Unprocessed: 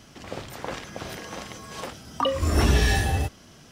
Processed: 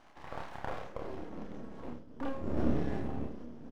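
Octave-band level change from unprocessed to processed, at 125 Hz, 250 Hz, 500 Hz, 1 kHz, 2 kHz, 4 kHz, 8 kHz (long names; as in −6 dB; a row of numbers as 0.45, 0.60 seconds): −15.0 dB, −4.5 dB, −9.5 dB, −12.5 dB, −18.5 dB, −25.5 dB, below −30 dB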